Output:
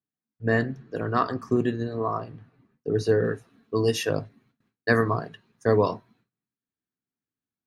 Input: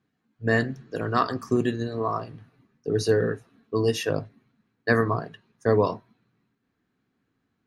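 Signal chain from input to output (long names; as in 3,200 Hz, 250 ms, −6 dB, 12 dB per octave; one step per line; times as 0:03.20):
high-shelf EQ 3,600 Hz −10 dB, from 0:03.25 +2.5 dB
noise gate with hold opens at −56 dBFS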